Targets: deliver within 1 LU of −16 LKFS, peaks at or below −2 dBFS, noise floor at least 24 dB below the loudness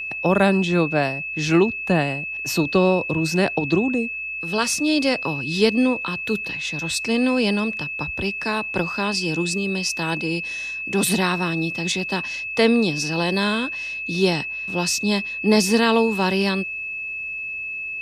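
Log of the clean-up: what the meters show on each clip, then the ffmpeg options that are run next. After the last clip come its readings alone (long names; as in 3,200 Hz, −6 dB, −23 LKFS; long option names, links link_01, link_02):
interfering tone 2,600 Hz; level of the tone −27 dBFS; integrated loudness −21.5 LKFS; sample peak −4.0 dBFS; target loudness −16.0 LKFS
→ -af "bandreject=frequency=2600:width=30"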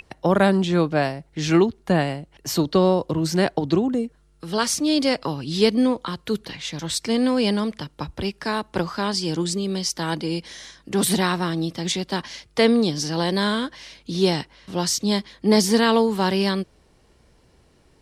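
interfering tone none found; integrated loudness −22.5 LKFS; sample peak −4.5 dBFS; target loudness −16.0 LKFS
→ -af "volume=6.5dB,alimiter=limit=-2dB:level=0:latency=1"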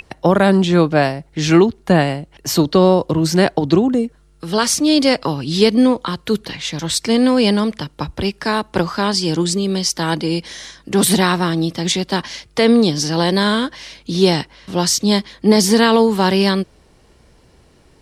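integrated loudness −16.5 LKFS; sample peak −2.0 dBFS; background noise floor −51 dBFS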